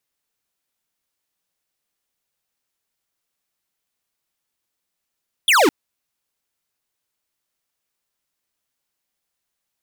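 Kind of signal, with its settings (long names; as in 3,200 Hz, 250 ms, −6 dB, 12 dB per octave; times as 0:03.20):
single falling chirp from 3,600 Hz, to 260 Hz, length 0.21 s square, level −13.5 dB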